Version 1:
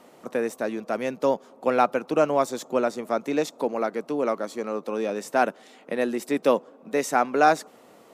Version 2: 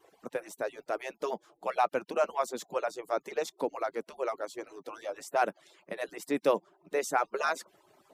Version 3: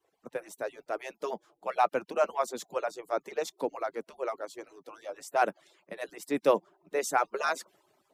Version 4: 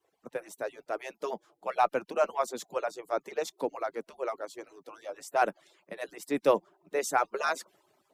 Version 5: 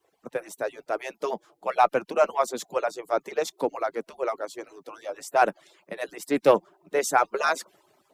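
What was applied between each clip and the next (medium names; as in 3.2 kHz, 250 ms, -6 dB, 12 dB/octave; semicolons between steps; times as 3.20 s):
harmonic-percussive separation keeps percussive; trim -5 dB
three bands expanded up and down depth 40%
Chebyshev shaper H 2 -33 dB, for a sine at -11 dBFS
loudspeaker Doppler distortion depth 0.1 ms; trim +5.5 dB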